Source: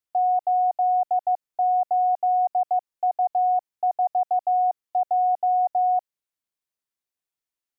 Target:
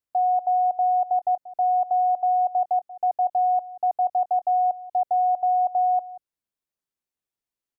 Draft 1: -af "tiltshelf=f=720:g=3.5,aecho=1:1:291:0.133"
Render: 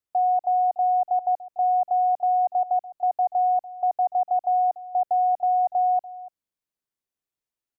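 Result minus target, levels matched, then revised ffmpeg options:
echo 0.106 s late
-af "tiltshelf=f=720:g=3.5,aecho=1:1:185:0.133"

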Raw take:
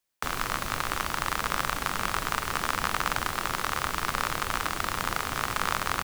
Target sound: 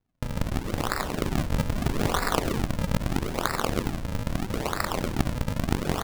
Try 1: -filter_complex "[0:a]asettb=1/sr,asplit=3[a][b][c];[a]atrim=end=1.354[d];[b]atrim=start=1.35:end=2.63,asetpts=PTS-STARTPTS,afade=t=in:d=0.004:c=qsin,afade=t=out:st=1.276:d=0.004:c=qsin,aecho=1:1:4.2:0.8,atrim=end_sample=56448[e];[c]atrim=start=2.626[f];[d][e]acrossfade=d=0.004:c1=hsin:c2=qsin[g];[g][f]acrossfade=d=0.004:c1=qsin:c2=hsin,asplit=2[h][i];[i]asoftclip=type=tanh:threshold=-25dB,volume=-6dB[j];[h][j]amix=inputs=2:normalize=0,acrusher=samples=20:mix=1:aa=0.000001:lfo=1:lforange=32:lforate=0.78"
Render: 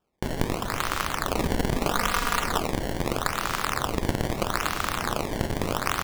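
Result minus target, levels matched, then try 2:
decimation with a swept rate: distortion -7 dB
-filter_complex "[0:a]asettb=1/sr,asplit=3[a][b][c];[a]atrim=end=1.354[d];[b]atrim=start=1.35:end=2.63,asetpts=PTS-STARTPTS,afade=t=in:d=0.004:c=qsin,afade=t=out:st=1.276:d=0.004:c=qsin,aecho=1:1:4.2:0.8,atrim=end_sample=56448[e];[c]atrim=start=2.626[f];[d][e]acrossfade=d=0.004:c1=hsin:c2=qsin[g];[g][f]acrossfade=d=0.004:c1=qsin:c2=hsin,asplit=2[h][i];[i]asoftclip=type=tanh:threshold=-25dB,volume=-6dB[j];[h][j]amix=inputs=2:normalize=0,acrusher=samples=68:mix=1:aa=0.000001:lfo=1:lforange=109:lforate=0.78"

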